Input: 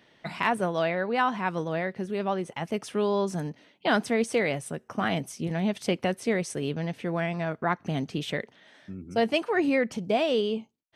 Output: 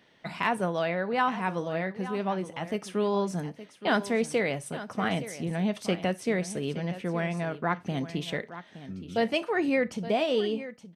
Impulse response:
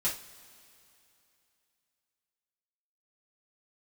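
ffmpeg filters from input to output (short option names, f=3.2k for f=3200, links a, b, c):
-filter_complex "[0:a]aecho=1:1:869:0.2,asplit=2[a][b];[1:a]atrim=start_sample=2205,atrim=end_sample=4410[c];[b][c]afir=irnorm=-1:irlink=0,volume=-17.5dB[d];[a][d]amix=inputs=2:normalize=0,volume=-2.5dB"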